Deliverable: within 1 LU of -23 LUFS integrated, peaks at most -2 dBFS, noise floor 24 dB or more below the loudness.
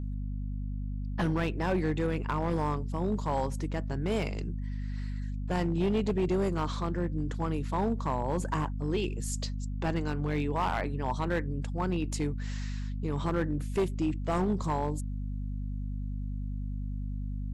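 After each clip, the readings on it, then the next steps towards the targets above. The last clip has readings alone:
clipped samples 1.7%; clipping level -22.5 dBFS; hum 50 Hz; highest harmonic 250 Hz; hum level -32 dBFS; loudness -32.5 LUFS; peak level -22.5 dBFS; loudness target -23.0 LUFS
-> clip repair -22.5 dBFS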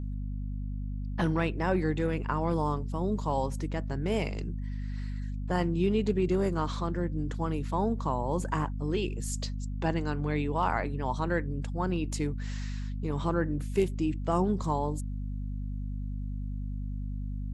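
clipped samples 0.0%; hum 50 Hz; highest harmonic 250 Hz; hum level -32 dBFS
-> de-hum 50 Hz, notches 5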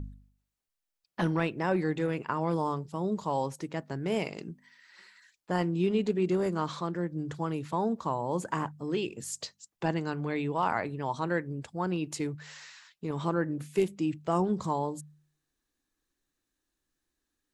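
hum not found; loudness -31.5 LUFS; peak level -14.5 dBFS; loudness target -23.0 LUFS
-> trim +8.5 dB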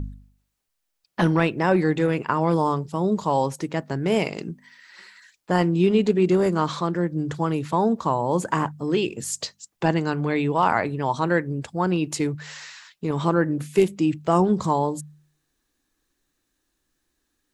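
loudness -23.0 LUFS; peak level -6.0 dBFS; noise floor -77 dBFS

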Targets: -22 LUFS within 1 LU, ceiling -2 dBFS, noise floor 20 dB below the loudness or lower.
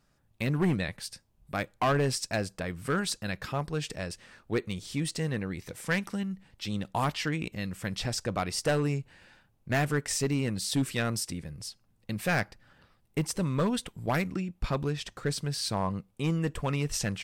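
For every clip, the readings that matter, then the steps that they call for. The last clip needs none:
clipped samples 0.8%; clipping level -20.5 dBFS; loudness -31.5 LUFS; peak level -20.5 dBFS; loudness target -22.0 LUFS
-> clip repair -20.5 dBFS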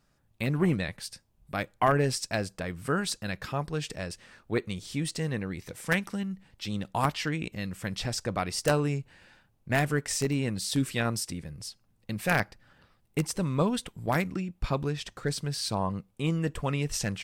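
clipped samples 0.0%; loudness -30.5 LUFS; peak level -11.5 dBFS; loudness target -22.0 LUFS
-> trim +8.5 dB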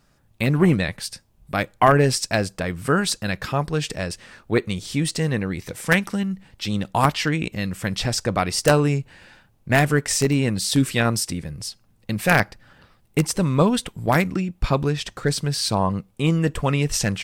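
loudness -22.0 LUFS; peak level -3.0 dBFS; noise floor -60 dBFS

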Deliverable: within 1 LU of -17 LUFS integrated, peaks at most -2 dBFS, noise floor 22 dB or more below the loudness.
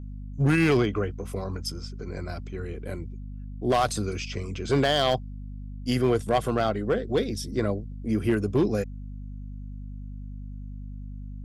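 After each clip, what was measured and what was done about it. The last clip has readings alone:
clipped samples 0.8%; clipping level -15.5 dBFS; hum 50 Hz; highest harmonic 250 Hz; hum level -35 dBFS; loudness -27.0 LUFS; peak level -15.5 dBFS; loudness target -17.0 LUFS
-> clip repair -15.5 dBFS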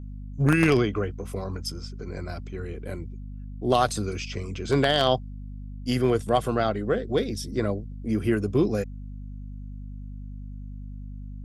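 clipped samples 0.0%; hum 50 Hz; highest harmonic 250 Hz; hum level -34 dBFS
-> de-hum 50 Hz, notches 5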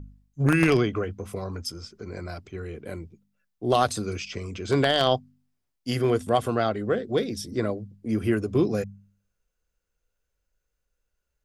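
hum not found; loudness -26.0 LUFS; peak level -6.5 dBFS; loudness target -17.0 LUFS
-> trim +9 dB; peak limiter -2 dBFS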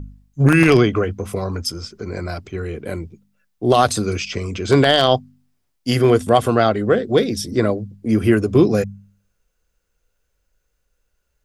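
loudness -17.5 LUFS; peak level -2.0 dBFS; noise floor -71 dBFS

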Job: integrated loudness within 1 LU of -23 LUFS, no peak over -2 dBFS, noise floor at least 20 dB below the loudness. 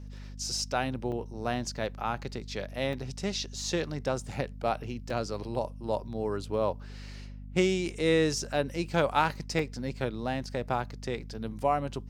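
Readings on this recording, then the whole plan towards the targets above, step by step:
dropouts 4; longest dropout 2.5 ms; hum 50 Hz; highest harmonic 250 Hz; hum level -40 dBFS; loudness -31.5 LUFS; peak level -9.5 dBFS; loudness target -23.0 LUFS
-> interpolate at 1.12/2.93/5.10/9.59 s, 2.5 ms; de-hum 50 Hz, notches 5; trim +8.5 dB; peak limiter -2 dBFS

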